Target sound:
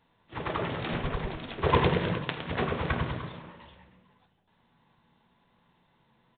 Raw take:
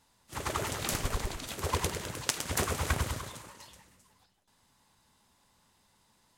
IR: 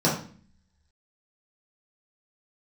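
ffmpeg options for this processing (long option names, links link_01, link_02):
-filter_complex "[0:a]asplit=3[link_01][link_02][link_03];[link_01]afade=type=out:start_time=1.62:duration=0.02[link_04];[link_02]acontrast=70,afade=type=in:start_time=1.62:duration=0.02,afade=type=out:start_time=2.17:duration=0.02[link_05];[link_03]afade=type=in:start_time=2.17:duration=0.02[link_06];[link_04][link_05][link_06]amix=inputs=3:normalize=0,aresample=8000,aresample=44100,asplit=2[link_07][link_08];[1:a]atrim=start_sample=2205[link_09];[link_08][link_09]afir=irnorm=-1:irlink=0,volume=-20.5dB[link_10];[link_07][link_10]amix=inputs=2:normalize=0"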